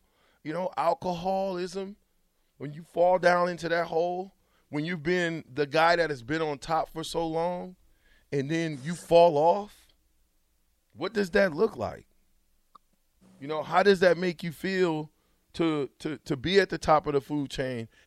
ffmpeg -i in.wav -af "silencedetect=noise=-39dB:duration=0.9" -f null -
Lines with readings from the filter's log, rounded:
silence_start: 9.66
silence_end: 10.98 | silence_duration: 1.33